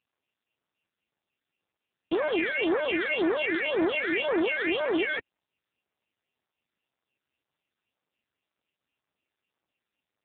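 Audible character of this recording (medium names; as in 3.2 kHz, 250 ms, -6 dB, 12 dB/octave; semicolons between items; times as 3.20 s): a buzz of ramps at a fixed pitch in blocks of 16 samples; phasing stages 8, 1.9 Hz, lowest notch 790–3000 Hz; AMR-NB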